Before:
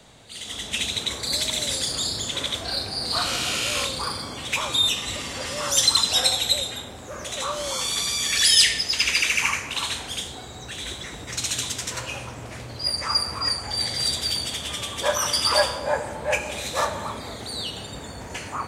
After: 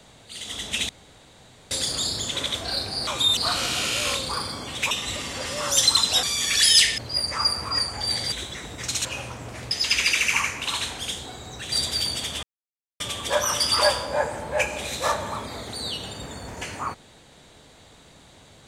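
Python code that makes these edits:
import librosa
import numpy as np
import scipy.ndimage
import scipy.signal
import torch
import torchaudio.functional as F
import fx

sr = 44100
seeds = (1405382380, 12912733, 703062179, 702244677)

y = fx.edit(x, sr, fx.room_tone_fill(start_s=0.89, length_s=0.82),
    fx.move(start_s=4.61, length_s=0.3, to_s=3.07),
    fx.cut(start_s=6.23, length_s=1.82),
    fx.swap(start_s=8.8, length_s=2.01, other_s=12.68, other_length_s=1.34),
    fx.cut(start_s=11.54, length_s=0.48),
    fx.insert_silence(at_s=14.73, length_s=0.57), tone=tone)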